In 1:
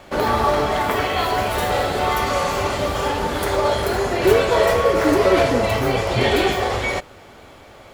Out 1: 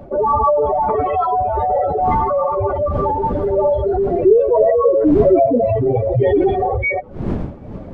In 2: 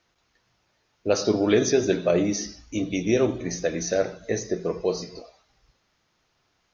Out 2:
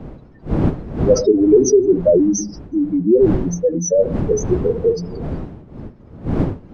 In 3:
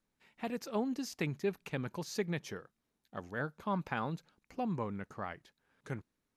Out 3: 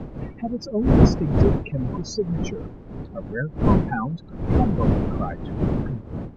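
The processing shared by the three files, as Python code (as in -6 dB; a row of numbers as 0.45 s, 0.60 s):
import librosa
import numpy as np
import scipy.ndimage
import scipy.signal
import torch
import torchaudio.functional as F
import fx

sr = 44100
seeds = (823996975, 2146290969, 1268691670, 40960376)

y = fx.spec_expand(x, sr, power=3.6)
y = fx.dmg_wind(y, sr, seeds[0], corner_hz=240.0, level_db=-34.0)
y = y * 10.0 ** (-1.5 / 20.0) / np.max(np.abs(y))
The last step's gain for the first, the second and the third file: +4.5 dB, +9.5 dB, +11.0 dB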